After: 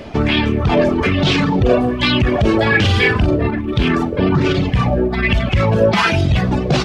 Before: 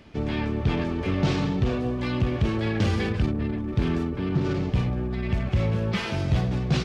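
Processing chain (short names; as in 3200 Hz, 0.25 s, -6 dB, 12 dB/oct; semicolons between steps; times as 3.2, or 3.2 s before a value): reverb removal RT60 1.6 s; 2.68–3.49 doubler 43 ms -2 dB; on a send at -15.5 dB: reverb RT60 0.65 s, pre-delay 3 ms; on the sum: maximiser +22 dB; LFO bell 1.2 Hz 530–3500 Hz +11 dB; gain -6.5 dB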